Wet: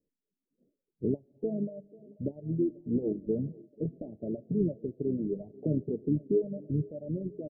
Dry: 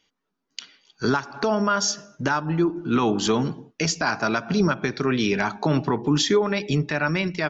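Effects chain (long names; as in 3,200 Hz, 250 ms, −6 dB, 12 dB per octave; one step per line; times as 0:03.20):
Butterworth low-pass 580 Hz 72 dB per octave
reverb reduction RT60 1.5 s
on a send: feedback echo with a high-pass in the loop 489 ms, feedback 81%, high-pass 300 Hz, level −20 dB
on the sum: pitch-shifted copies added −5 semitones −13 dB
level −6.5 dB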